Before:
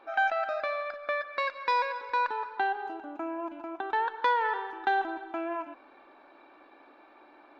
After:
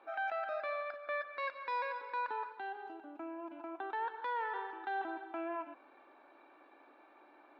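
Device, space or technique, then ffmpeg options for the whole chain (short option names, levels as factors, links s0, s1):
DJ mixer with the lows and highs turned down: -filter_complex "[0:a]acrossover=split=190 4200:gain=0.251 1 0.224[s0][s1][s2];[s0][s1][s2]amix=inputs=3:normalize=0,alimiter=level_in=1.06:limit=0.0631:level=0:latency=1:release=15,volume=0.944,asettb=1/sr,asplit=3[s3][s4][s5];[s3]atrim=end=2.524[s6];[s4]atrim=start=2.52:end=3.51,asetpts=PTS-STARTPTS,afade=t=in:d=0.004:c=qsin,afade=t=out:st=0.986:d=0.004:c=qsin,equalizer=f=1000:t=o:w=2.6:g=-5.5[s7];[s5]atrim=start=3.506[s8];[s6][s7]acrossfade=d=0.004:c1=hsin:c2=qsin[s9];[s9][s8]acrossfade=d=0.004:c1=qsin:c2=hsin,volume=0.531"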